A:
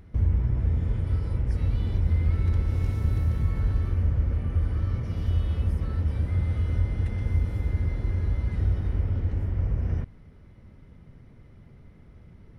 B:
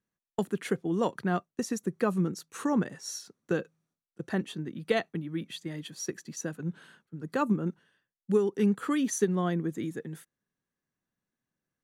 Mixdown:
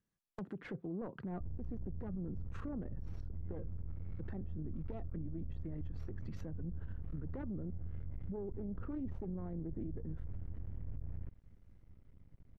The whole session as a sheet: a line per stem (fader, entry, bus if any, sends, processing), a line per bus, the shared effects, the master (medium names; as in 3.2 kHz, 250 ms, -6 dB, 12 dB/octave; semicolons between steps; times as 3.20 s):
-15.5 dB, 1.25 s, no send, half-wave rectifier
-3.5 dB, 0.00 s, no send, self-modulated delay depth 0.4 ms; peak limiter -23 dBFS, peak gain reduction 9 dB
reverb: none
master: low-pass that closes with the level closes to 730 Hz, closed at -34.5 dBFS; bass shelf 150 Hz +11 dB; peak limiter -34 dBFS, peak gain reduction 16.5 dB